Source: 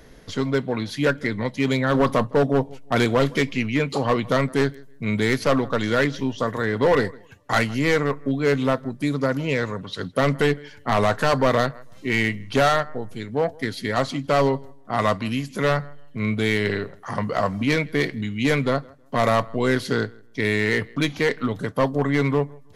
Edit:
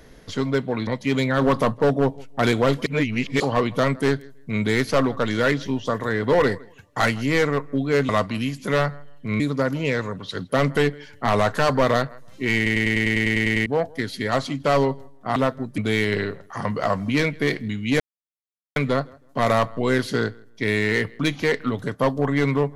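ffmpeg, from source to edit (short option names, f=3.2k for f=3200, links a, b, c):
-filter_complex "[0:a]asplit=20[a][b][c][d][e][f][g][h][i][j][k][l][m][n][o][p][q][r][s][t];[a]atrim=end=0.872[u];[b]atrim=start=1.398:end=3.392[v];[c]atrim=start=3.388:end=3.932,asetpts=PTS-STARTPTS,areverse[w];[d]atrim=start=3.928:end=8.622[x];[e]atrim=start=14.998:end=16.312[y];[f]atrim=start=9.038:end=12.302[z];[g]atrim=start=12.198:end=12.302[aa];[h]atrim=start=12.198:end=12.302[ab];[i]atrim=start=12.198:end=12.302[ac];[j]atrim=start=12.198:end=12.302[ad];[k]atrim=start=12.198:end=12.302[ae];[l]atrim=start=12.198:end=12.302[af];[m]atrim=start=12.198:end=12.302[ag];[n]atrim=start=12.198:end=12.302[ah];[o]atrim=start=12.198:end=12.302[ai];[p]atrim=start=12.198:end=12.302[aj];[q]atrim=start=13.298:end=15.002[ak];[r]atrim=start=8.618:end=9.042[al];[s]atrim=start=16.308:end=18.53,asetpts=PTS-STARTPTS,afade=t=out:st=2.218:d=0.004:c=hsin,apad=pad_dur=0.76[am];[t]atrim=start=18.53,asetpts=PTS-STARTPTS,afade=t=in:d=0.004:c=hsin[an];[u][v]acrossfade=d=0.004:c1=hsin:c2=hsin[ao];[ao][w]acrossfade=d=0.004:c1=hsin:c2=hsin[ap];[ap][x]acrossfade=d=0.004:c1=hsin:c2=hsin[aq];[aq][y]acrossfade=d=0.004:c1=hsin:c2=hsin[ar];[ar][z]acrossfade=d=0.004:c1=hsin:c2=hsin[as];[as][aa]acrossfade=d=0.004:c1=hsin:c2=hsin[at];[at][ab]acrossfade=d=0.004:c1=hsin:c2=hsin[au];[au][ac]acrossfade=d=0.004:c1=hsin:c2=hsin[av];[av][ad]acrossfade=d=0.004:c1=hsin:c2=hsin[aw];[aw][ae]acrossfade=d=0.004:c1=hsin:c2=hsin[ax];[ax][af]acrossfade=d=0.004:c1=hsin:c2=hsin[ay];[ay][ag]acrossfade=d=0.004:c1=hsin:c2=hsin[az];[az][ah]acrossfade=d=0.004:c1=hsin:c2=hsin[ba];[ba][ai]acrossfade=d=0.004:c1=hsin:c2=hsin[bb];[bb][aj]acrossfade=d=0.004:c1=hsin:c2=hsin[bc];[bc][ak]acrossfade=d=0.004:c1=hsin:c2=hsin[bd];[bd][al]acrossfade=d=0.004:c1=hsin:c2=hsin[be];[am][an]concat=n=2:v=0:a=1[bf];[be][bf]acrossfade=d=0.004:c1=hsin:c2=hsin"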